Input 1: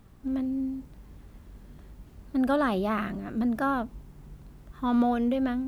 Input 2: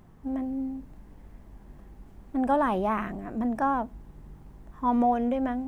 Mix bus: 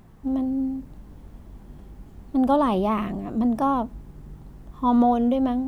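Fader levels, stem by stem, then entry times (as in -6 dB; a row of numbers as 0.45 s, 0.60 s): -2.5 dB, +2.0 dB; 0.00 s, 0.00 s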